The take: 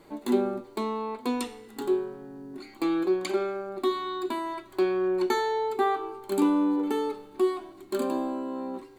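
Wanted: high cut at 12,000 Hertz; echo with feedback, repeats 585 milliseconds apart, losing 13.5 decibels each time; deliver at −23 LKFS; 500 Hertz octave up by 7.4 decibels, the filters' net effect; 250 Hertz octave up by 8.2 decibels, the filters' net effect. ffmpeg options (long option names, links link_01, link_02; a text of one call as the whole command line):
ffmpeg -i in.wav -af "lowpass=12000,equalizer=frequency=250:width_type=o:gain=8,equalizer=frequency=500:width_type=o:gain=6.5,aecho=1:1:585|1170:0.211|0.0444,volume=-1.5dB" out.wav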